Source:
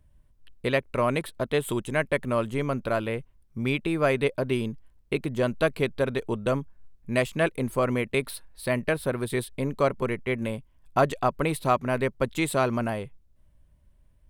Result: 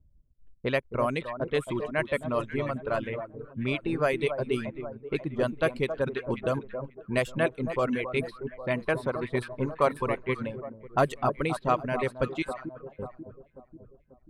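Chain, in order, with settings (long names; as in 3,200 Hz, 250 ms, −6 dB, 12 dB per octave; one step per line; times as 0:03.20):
0:12.42–0:12.99: first difference
delay that swaps between a low-pass and a high-pass 270 ms, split 1,300 Hz, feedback 71%, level −6 dB
reverb reduction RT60 1.4 s
0:08.75–0:10.50: parametric band 1,000 Hz +6.5 dB 0.71 octaves
low-pass that shuts in the quiet parts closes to 370 Hz, open at −20 dBFS
level −2 dB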